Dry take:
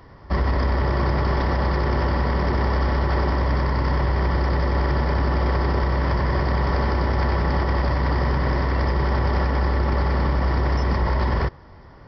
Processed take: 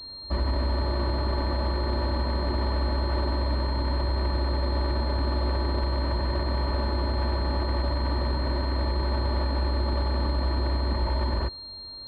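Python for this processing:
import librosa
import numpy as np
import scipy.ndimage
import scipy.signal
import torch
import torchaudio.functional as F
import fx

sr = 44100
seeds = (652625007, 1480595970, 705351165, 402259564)

y = fx.air_absorb(x, sr, metres=220.0)
y = y + 0.58 * np.pad(y, (int(3.3 * sr / 1000.0), 0))[:len(y)]
y = fx.pwm(y, sr, carrier_hz=4200.0)
y = y * 10.0 ** (-6.5 / 20.0)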